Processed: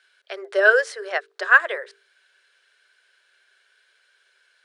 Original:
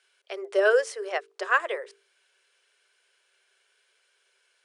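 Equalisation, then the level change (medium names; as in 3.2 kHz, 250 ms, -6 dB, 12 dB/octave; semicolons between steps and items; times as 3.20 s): fifteen-band graphic EQ 630 Hz +4 dB, 1.6 kHz +12 dB, 4 kHz +8 dB; -1.5 dB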